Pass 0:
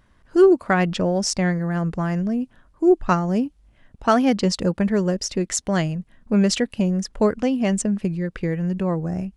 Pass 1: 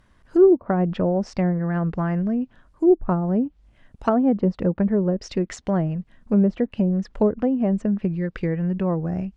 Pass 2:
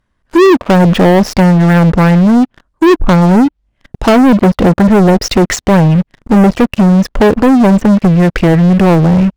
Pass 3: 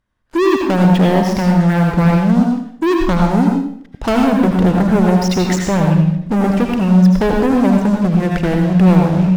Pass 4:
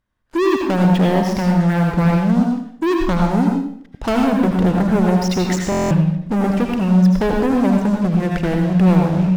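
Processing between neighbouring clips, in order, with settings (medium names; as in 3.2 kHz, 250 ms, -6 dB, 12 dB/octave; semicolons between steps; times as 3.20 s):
low-pass that closes with the level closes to 650 Hz, closed at -15.5 dBFS
waveshaping leveller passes 5; trim +3.5 dB
reverberation RT60 0.65 s, pre-delay 73 ms, DRR 1 dB; trim -8.5 dB
buffer glitch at 5.70 s, samples 1024, times 8; trim -3 dB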